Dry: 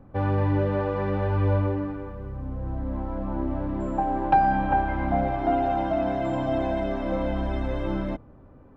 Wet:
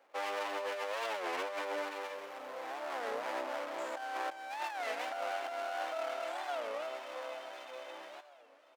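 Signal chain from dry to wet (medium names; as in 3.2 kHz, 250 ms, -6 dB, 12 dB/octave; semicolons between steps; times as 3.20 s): comb filter that takes the minimum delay 0.32 ms; Doppler pass-by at 2.45 s, 6 m/s, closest 6 m; high-pass 540 Hz 24 dB/octave; treble shelf 2.9 kHz +8.5 dB; compressor with a negative ratio -39 dBFS, ratio -1; feedback delay 529 ms, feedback 60%, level -18 dB; warped record 33 1/3 rpm, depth 250 cents; trim +1 dB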